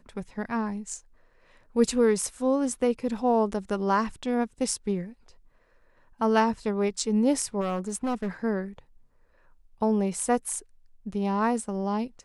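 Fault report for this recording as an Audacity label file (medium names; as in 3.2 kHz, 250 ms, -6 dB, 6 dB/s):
7.600000	8.280000	clipped -24.5 dBFS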